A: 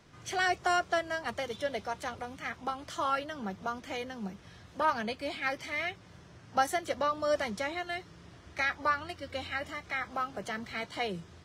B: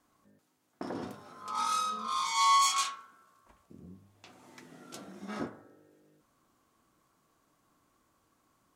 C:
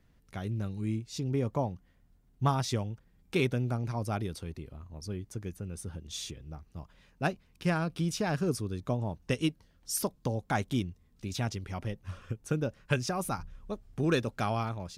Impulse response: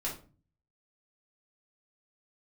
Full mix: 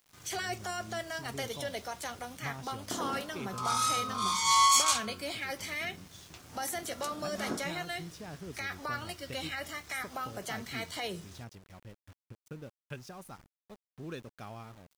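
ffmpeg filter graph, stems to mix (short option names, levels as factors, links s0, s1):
-filter_complex "[0:a]aemphasis=mode=production:type=75fm,alimiter=level_in=1.19:limit=0.0631:level=0:latency=1:release=11,volume=0.841,volume=0.708,asplit=2[s0][s1];[s1]volume=0.2[s2];[1:a]highshelf=f=5000:g=9.5,adelay=2100,volume=1[s3];[2:a]volume=0.188[s4];[3:a]atrim=start_sample=2205[s5];[s2][s5]afir=irnorm=-1:irlink=0[s6];[s0][s3][s4][s6]amix=inputs=4:normalize=0,aeval=exprs='val(0)*gte(abs(val(0)),0.00237)':c=same"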